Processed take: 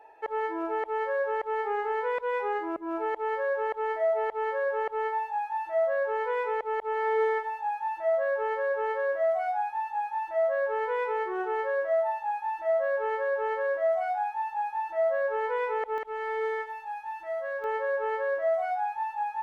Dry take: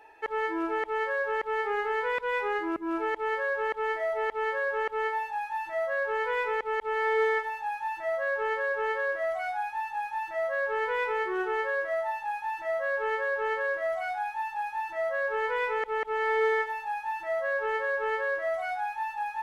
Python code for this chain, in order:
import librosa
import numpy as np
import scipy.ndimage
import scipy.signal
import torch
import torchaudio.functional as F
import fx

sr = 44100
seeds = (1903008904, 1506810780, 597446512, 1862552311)

y = fx.peak_eq(x, sr, hz=650.0, db=fx.steps((0.0, 13.5), (15.98, 6.0), (17.64, 13.0)), octaves=1.6)
y = F.gain(torch.from_numpy(y), -8.5).numpy()